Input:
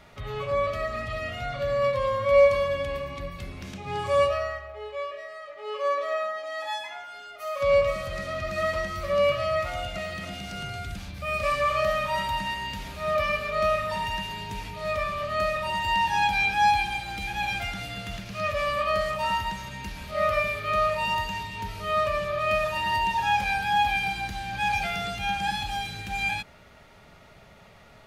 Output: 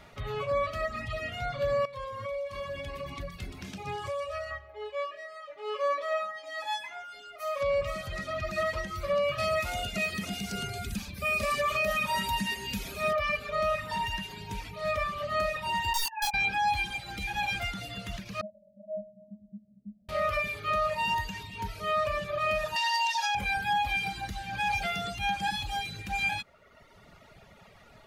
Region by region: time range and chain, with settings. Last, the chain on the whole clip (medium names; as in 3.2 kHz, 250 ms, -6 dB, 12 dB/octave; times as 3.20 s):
1.85–4.51 s: compression 10:1, threshold -29 dBFS + feedback echo behind a high-pass 123 ms, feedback 76%, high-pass 3.7 kHz, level -4.5 dB
9.38–13.13 s: treble shelf 5.1 kHz +12 dB + small resonant body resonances 220/410/2500 Hz, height 13 dB, ringing for 95 ms
15.93–16.34 s: formants replaced by sine waves + integer overflow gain 17.5 dB + detune thickener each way 26 cents
18.41–20.09 s: Chebyshev low-pass 740 Hz, order 8 + peaking EQ 200 Hz +10.5 dB 0.72 oct + feedback comb 210 Hz, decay 0.38 s, harmonics odd, mix 100%
22.76–23.35 s: steep high-pass 530 Hz 96 dB/octave + peaking EQ 5.3 kHz +14.5 dB 1.2 oct
whole clip: reverb removal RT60 1.2 s; peak limiter -20.5 dBFS